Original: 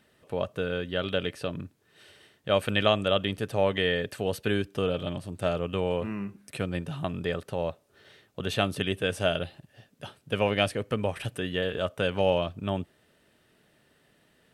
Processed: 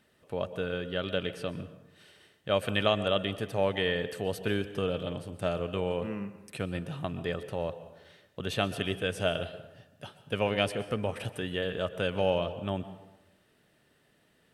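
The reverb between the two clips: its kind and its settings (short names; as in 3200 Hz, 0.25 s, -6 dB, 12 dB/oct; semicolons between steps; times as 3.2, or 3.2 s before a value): plate-style reverb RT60 1 s, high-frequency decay 0.6×, pre-delay 0.11 s, DRR 13 dB; gain -3 dB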